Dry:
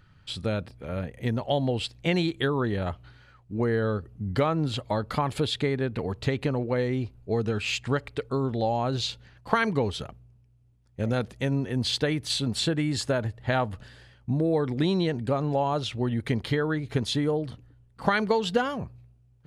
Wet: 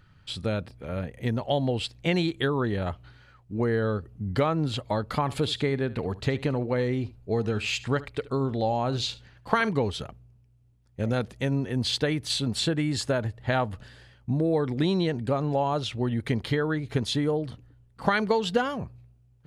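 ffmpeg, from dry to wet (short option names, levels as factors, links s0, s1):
-filter_complex "[0:a]asettb=1/sr,asplit=3[s0][s1][s2];[s0]atrim=end=5.214[s3];[s1]atrim=start=5.21:end=9.69,asetpts=PTS-STARTPTS,afade=t=in:d=0.004:c=qsin,afade=t=out:st=4.476:d=0.004:c=qsin,aecho=1:1:73:0.126,atrim=end_sample=197568[s4];[s2]atrim=start=9.686[s5];[s3][s4]acrossfade=d=0.004:c1=hsin:c2=qsin[s6];[s6][s5]acrossfade=d=0.004:c1=qsin:c2=hsin"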